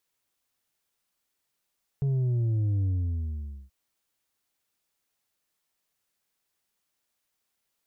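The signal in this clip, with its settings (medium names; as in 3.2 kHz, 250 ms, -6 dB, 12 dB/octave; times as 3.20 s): sub drop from 140 Hz, over 1.68 s, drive 4.5 dB, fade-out 0.86 s, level -23.5 dB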